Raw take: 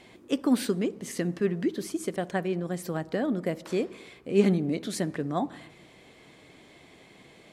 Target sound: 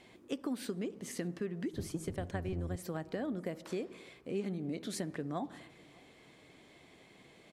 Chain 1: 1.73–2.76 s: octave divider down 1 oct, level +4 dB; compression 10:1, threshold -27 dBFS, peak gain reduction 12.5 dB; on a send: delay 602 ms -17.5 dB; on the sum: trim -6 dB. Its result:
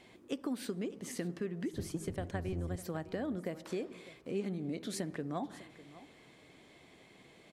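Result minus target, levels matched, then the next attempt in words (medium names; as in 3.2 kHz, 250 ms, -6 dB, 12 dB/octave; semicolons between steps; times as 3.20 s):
echo-to-direct +9 dB
1.73–2.76 s: octave divider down 1 oct, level +4 dB; compression 10:1, threshold -27 dBFS, peak gain reduction 12.5 dB; on a send: delay 602 ms -26.5 dB; on the sum: trim -6 dB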